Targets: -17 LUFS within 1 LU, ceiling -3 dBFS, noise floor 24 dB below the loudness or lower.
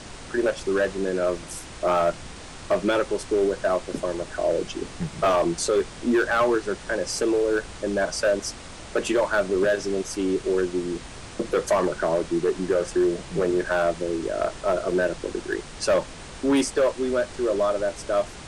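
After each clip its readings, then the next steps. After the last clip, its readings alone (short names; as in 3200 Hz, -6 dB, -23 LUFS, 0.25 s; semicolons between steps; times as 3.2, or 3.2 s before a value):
clipped 1.8%; flat tops at -15.5 dBFS; noise floor -40 dBFS; noise floor target -49 dBFS; loudness -25.0 LUFS; peak -15.5 dBFS; loudness target -17.0 LUFS
-> clip repair -15.5 dBFS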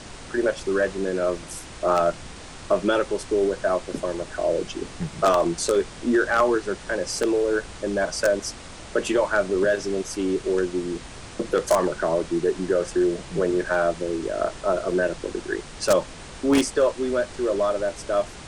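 clipped 0.0%; noise floor -40 dBFS; noise floor target -48 dBFS
-> noise print and reduce 8 dB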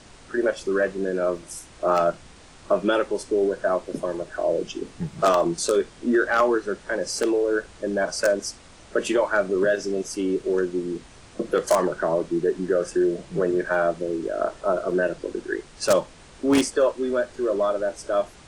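noise floor -48 dBFS; noise floor target -49 dBFS
-> noise print and reduce 6 dB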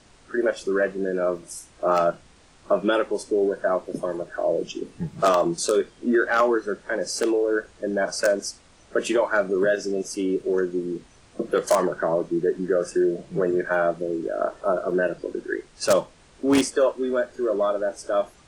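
noise floor -54 dBFS; loudness -24.0 LUFS; peak -6.5 dBFS; loudness target -17.0 LUFS
-> gain +7 dB; limiter -3 dBFS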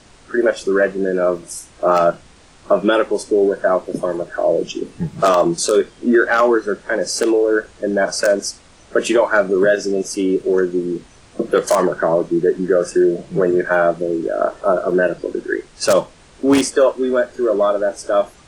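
loudness -17.5 LUFS; peak -3.0 dBFS; noise floor -47 dBFS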